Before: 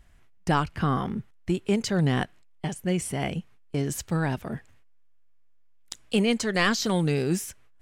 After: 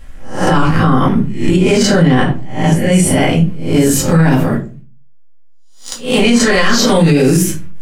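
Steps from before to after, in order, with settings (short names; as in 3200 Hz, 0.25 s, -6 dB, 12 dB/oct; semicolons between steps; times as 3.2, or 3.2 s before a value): spectral swells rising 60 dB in 0.43 s; 2.02–2.92 high shelf 5300 Hz -8.5 dB; 4.54–6.23 power-law curve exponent 1.4; shoebox room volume 150 m³, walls furnished, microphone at 2.2 m; maximiser +13.5 dB; gain -1 dB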